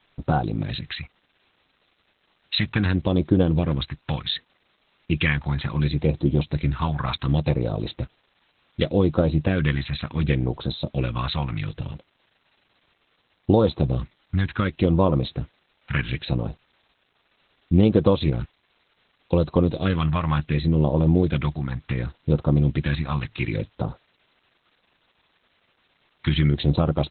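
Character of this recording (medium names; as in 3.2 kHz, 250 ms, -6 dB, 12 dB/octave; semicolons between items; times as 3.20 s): phasing stages 2, 0.68 Hz, lowest notch 420–1900 Hz; a quantiser's noise floor 10-bit, dither triangular; Opus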